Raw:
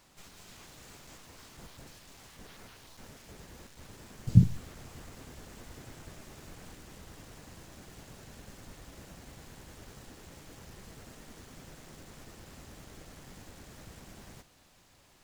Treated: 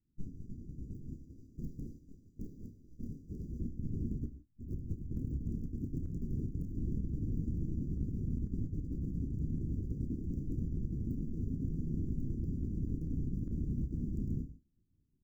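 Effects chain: Wiener smoothing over 41 samples; inverse Chebyshev band-stop 1100–2300 Hz, stop band 80 dB; expander -49 dBFS; 1.14–3.6 low shelf 440 Hz -9.5 dB; negative-ratio compressor -54 dBFS, ratio -0.5; fixed phaser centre 2900 Hz, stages 6; doubler 30 ms -11 dB; reverb, pre-delay 3 ms, DRR 11 dB; gain +11 dB

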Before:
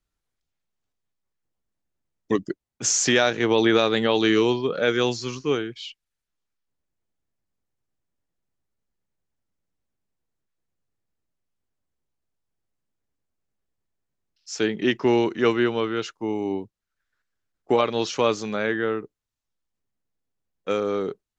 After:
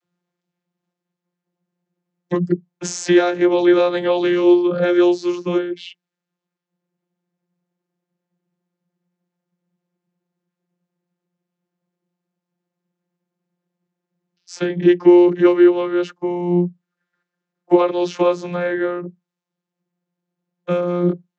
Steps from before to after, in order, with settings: in parallel at +2 dB: compressor, threshold -28 dBFS, peak gain reduction 13.5 dB; on the sum: vocoder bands 32, saw 176 Hz; gain +4.5 dB

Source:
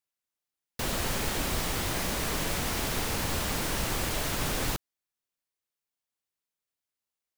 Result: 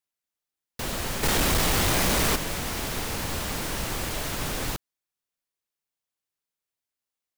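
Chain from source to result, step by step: 1.23–2.36 sample leveller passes 3

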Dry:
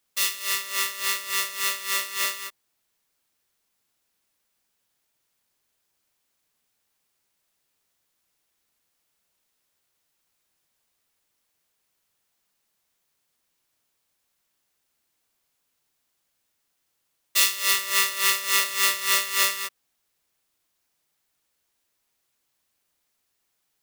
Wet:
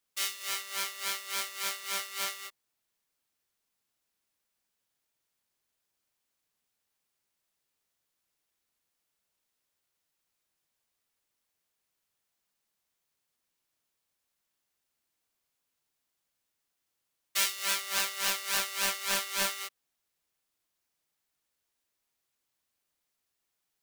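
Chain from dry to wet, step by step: Doppler distortion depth 0.47 ms; gain -7 dB

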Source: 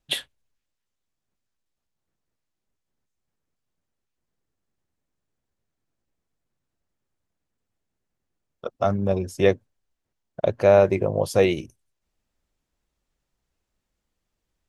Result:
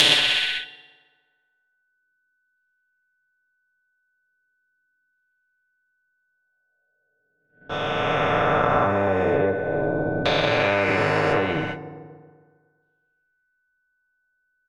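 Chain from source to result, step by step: spectral swells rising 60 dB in 2.20 s; notches 60/120/180 Hz; thinning echo 62 ms, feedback 77%, high-pass 890 Hz, level -10.5 dB; in parallel at -2.5 dB: limiter -11 dBFS, peak gain reduction 7.5 dB; on the sum: compressor 6:1, threshold -25 dBFS, peak gain reduction 17 dB; LFO low-pass saw down 0.39 Hz 250–3800 Hz; whine 1500 Hz -47 dBFS; gate -42 dBFS, range -46 dB; comb 6.8 ms, depth 88%; FDN reverb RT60 1.6 s, low-frequency decay 0.9×, high-frequency decay 0.65×, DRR 18 dB; spectral compressor 2:1; gain +2.5 dB

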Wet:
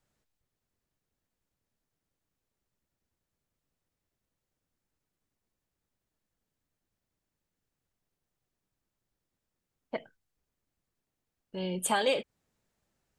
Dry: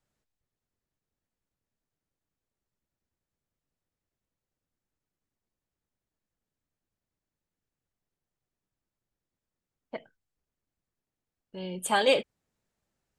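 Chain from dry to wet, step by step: compressor 3:1, threshold -29 dBFS, peak gain reduction 9 dB; gain +3 dB

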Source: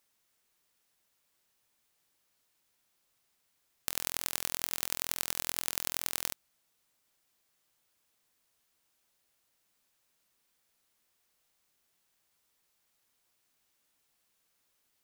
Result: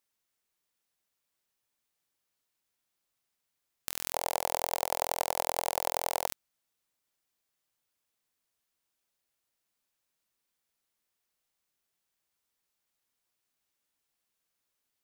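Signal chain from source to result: 4.13–6.27 band shelf 680 Hz +15.5 dB 1.1 oct; sample leveller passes 2; gain -3.5 dB

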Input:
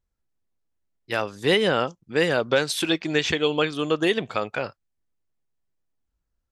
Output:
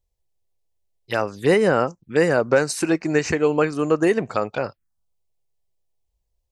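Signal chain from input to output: envelope phaser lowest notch 240 Hz, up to 3400 Hz, full sweep at -24 dBFS; gain +4.5 dB

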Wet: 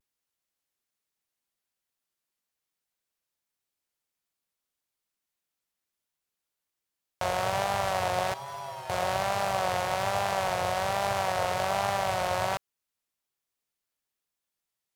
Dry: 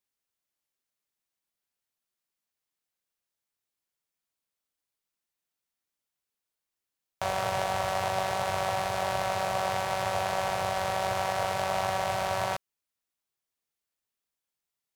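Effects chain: 8.33–8.9 metallic resonator 130 Hz, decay 0.3 s, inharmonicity 0.002; vibrato 1.2 Hz 74 cents; gain +1 dB

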